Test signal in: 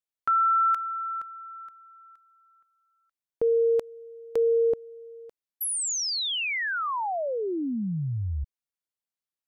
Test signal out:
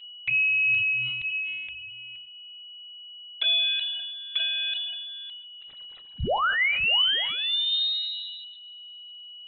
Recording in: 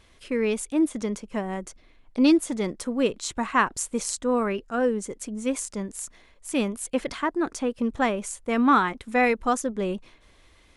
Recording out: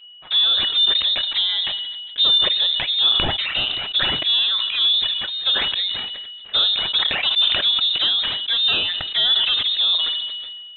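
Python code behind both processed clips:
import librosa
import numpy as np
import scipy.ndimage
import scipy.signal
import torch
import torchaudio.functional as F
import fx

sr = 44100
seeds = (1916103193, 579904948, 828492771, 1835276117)

y = scipy.signal.sosfilt(scipy.signal.butter(2, 320.0, 'highpass', fs=sr, output='sos'), x)
y = fx.high_shelf(y, sr, hz=2500.0, db=-10.0)
y = fx.rider(y, sr, range_db=4, speed_s=0.5)
y = fx.leveller(y, sr, passes=3)
y = y + 10.0 ** (-40.0 / 20.0) * np.sin(2.0 * np.pi * 970.0 * np.arange(len(y)) / sr)
y = fx.env_flanger(y, sr, rest_ms=7.2, full_db=-16.0)
y = fx.rev_double_slope(y, sr, seeds[0], early_s=0.28, late_s=2.3, knee_db=-20, drr_db=13.0)
y = fx.freq_invert(y, sr, carrier_hz=3900)
y = fx.sustainer(y, sr, db_per_s=28.0)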